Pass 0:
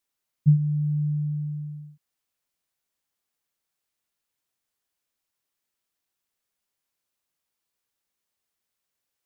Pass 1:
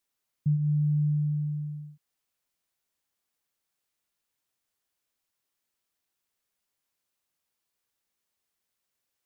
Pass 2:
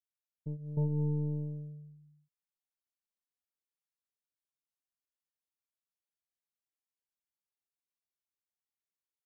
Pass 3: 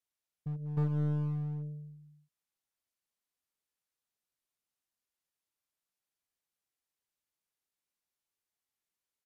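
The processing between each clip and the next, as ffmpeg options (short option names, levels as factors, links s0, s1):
-af "alimiter=limit=0.106:level=0:latency=1:release=189"
-af "aecho=1:1:309:0.708,aeval=exprs='0.168*(cos(1*acos(clip(val(0)/0.168,-1,1)))-cos(1*PI/2))+0.0422*(cos(3*acos(clip(val(0)/0.168,-1,1)))-cos(3*PI/2))+0.0237*(cos(4*acos(clip(val(0)/0.168,-1,1)))-cos(4*PI/2))+0.0119*(cos(6*acos(clip(val(0)/0.168,-1,1)))-cos(6*PI/2))':c=same,volume=0.376"
-filter_complex "[0:a]asplit=2[s0][s1];[s1]aeval=exprs='0.0141*(abs(mod(val(0)/0.0141+3,4)-2)-1)':c=same,volume=0.562[s2];[s0][s2]amix=inputs=2:normalize=0,aresample=32000,aresample=44100"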